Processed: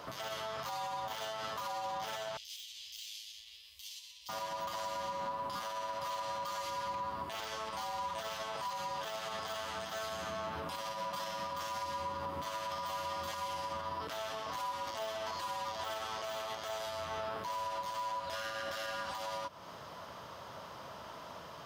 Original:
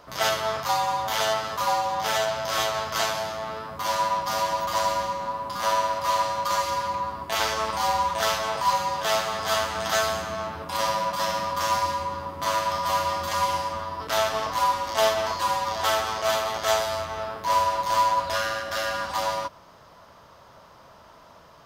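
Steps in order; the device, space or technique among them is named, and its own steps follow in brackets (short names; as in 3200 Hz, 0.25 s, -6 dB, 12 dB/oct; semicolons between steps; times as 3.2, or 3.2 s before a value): broadcast voice chain (HPF 82 Hz; de-esser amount 55%; compressor 4:1, threshold -38 dBFS, peak gain reduction 16.5 dB; bell 3100 Hz +4 dB 0.39 oct; limiter -33 dBFS, peak gain reduction 11 dB); 2.37–4.29 inverse Chebyshev band-stop 100–1500 Hz, stop band 40 dB; gain +2.5 dB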